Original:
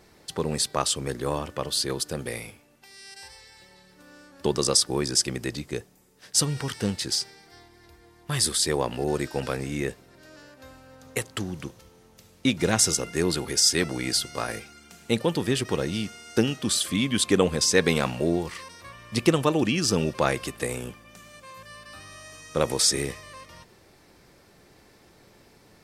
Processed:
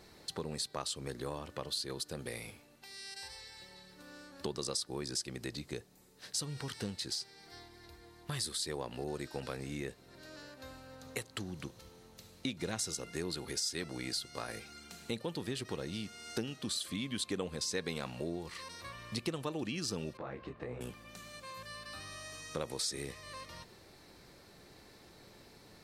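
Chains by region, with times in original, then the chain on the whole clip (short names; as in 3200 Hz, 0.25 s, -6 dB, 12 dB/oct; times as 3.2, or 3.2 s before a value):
20.17–20.81 LPF 1500 Hz + compressor 3:1, threshold -26 dBFS + detuned doubles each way 51 cents
whole clip: bell 4100 Hz +8 dB 0.22 oct; compressor 2.5:1, threshold -38 dBFS; gain -2.5 dB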